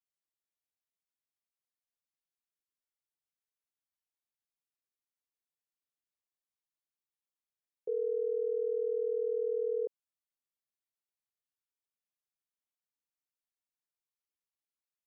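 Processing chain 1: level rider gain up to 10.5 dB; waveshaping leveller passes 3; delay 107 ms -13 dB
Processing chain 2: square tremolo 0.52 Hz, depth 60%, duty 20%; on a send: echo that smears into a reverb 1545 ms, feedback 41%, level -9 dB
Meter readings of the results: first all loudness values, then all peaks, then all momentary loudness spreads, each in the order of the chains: -19.5 LUFS, -39.5 LUFS; -14.5 dBFS, -24.5 dBFS; 7 LU, 23 LU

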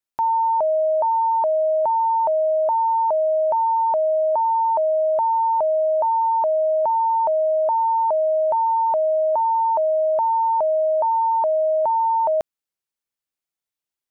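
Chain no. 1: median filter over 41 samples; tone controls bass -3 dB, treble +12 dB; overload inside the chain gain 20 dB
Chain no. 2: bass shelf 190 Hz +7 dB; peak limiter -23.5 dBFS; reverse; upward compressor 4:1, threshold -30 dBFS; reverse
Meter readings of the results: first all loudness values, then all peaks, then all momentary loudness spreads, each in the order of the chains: -24.0 LUFS, -27.0 LUFS; -20.0 dBFS, -15.0 dBFS; 4 LU, 8 LU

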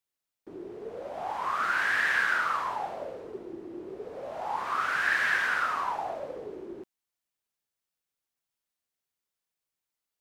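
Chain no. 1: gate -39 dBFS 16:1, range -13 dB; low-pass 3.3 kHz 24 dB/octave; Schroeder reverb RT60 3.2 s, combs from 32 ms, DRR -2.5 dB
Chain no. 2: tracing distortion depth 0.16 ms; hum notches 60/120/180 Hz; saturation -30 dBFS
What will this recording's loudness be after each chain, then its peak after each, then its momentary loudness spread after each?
-24.5 LUFS, -35.0 LUFS; -10.5 dBFS, -30.0 dBFS; 18 LU, 12 LU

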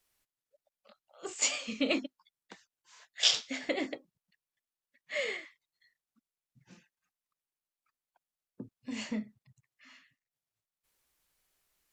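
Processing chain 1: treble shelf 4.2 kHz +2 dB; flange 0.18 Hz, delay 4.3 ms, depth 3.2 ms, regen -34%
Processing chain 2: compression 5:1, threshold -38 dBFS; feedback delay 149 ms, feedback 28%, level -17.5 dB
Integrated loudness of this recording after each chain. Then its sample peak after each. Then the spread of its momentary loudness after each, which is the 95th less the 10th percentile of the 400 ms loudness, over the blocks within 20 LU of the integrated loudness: -35.5 LUFS, -42.5 LUFS; -12.0 dBFS, -21.5 dBFS; 22 LU, 21 LU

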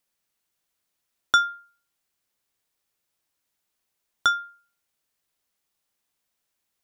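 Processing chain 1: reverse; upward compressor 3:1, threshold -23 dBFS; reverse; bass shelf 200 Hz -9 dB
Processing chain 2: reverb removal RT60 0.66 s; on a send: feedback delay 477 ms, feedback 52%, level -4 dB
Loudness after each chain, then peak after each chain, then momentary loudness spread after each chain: -25.5 LUFS, -27.5 LUFS; -5.5 dBFS, -5.5 dBFS; 19 LU, 21 LU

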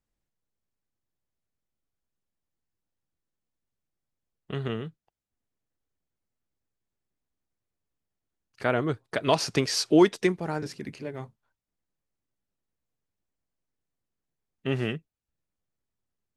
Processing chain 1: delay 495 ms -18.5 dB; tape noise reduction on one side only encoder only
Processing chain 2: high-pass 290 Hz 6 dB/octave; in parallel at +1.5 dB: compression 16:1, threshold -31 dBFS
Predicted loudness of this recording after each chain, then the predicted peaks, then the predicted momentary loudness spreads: -27.0 LUFS, -26.0 LUFS; -7.5 dBFS, -7.0 dBFS; 21 LU, 14 LU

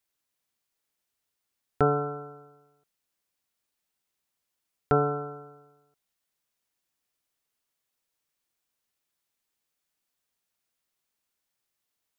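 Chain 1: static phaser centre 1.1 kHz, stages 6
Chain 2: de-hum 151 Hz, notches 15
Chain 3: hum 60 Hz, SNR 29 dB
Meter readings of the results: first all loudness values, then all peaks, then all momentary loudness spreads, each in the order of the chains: -31.0 LUFS, -27.5 LUFS, -28.5 LUFS; -14.5 dBFS, -9.5 dBFS, -9.0 dBFS; 18 LU, 18 LU, 18 LU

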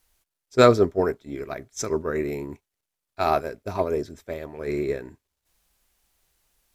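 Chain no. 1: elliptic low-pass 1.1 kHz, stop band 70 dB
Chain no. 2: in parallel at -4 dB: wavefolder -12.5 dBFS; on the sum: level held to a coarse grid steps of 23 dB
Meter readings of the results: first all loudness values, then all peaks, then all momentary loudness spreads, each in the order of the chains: -25.5 LUFS, -28.5 LUFS; -4.0 dBFS, -13.0 dBFS; 17 LU, 22 LU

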